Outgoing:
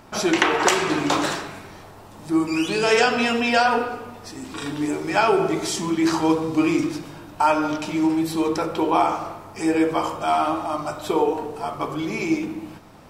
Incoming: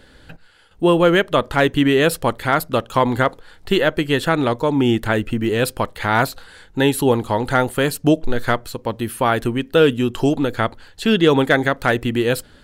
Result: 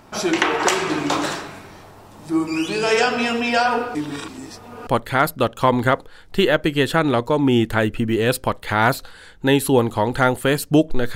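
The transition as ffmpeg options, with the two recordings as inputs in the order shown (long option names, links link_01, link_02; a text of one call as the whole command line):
ffmpeg -i cue0.wav -i cue1.wav -filter_complex "[0:a]apad=whole_dur=11.15,atrim=end=11.15,asplit=2[link_01][link_02];[link_01]atrim=end=3.952[link_03];[link_02]atrim=start=3.948:end=4.872,asetpts=PTS-STARTPTS,areverse[link_04];[1:a]atrim=start=2.198:end=8.48[link_05];[link_03][link_04]acrossfade=duration=0.004:curve1=hsin:curve2=hsin[link_06];[link_06][link_05]acrossfade=duration=0.004:curve1=hsin:curve2=hsin" out.wav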